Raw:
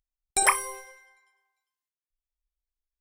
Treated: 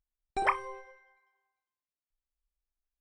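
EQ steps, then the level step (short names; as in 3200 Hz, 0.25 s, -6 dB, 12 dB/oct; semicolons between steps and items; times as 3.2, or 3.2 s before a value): tape spacing loss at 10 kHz 37 dB; 0.0 dB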